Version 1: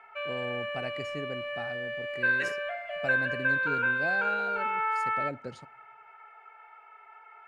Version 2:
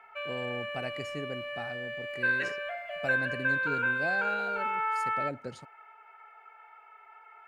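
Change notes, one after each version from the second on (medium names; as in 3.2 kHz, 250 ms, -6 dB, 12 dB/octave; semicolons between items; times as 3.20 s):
second voice: add distance through air 100 m; background: send off; master: add treble shelf 10 kHz +11 dB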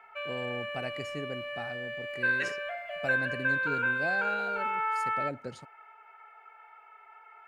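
second voice: add tilt EQ +2 dB/octave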